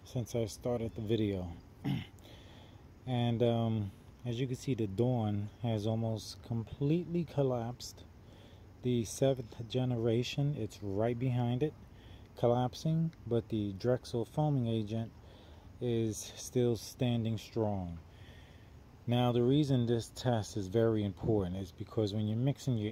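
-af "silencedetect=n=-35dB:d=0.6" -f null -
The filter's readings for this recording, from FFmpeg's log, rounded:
silence_start: 2.03
silence_end: 3.08 | silence_duration: 1.05
silence_start: 7.87
silence_end: 8.85 | silence_duration: 0.98
silence_start: 11.69
silence_end: 12.43 | silence_duration: 0.74
silence_start: 15.05
silence_end: 15.82 | silence_duration: 0.78
silence_start: 17.92
silence_end: 19.08 | silence_duration: 1.15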